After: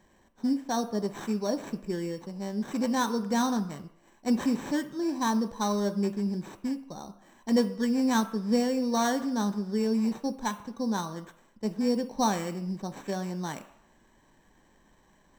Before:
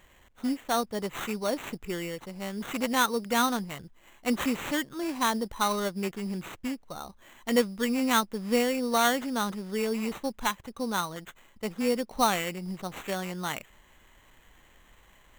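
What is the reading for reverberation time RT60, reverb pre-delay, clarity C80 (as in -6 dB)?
not exponential, 3 ms, 16.0 dB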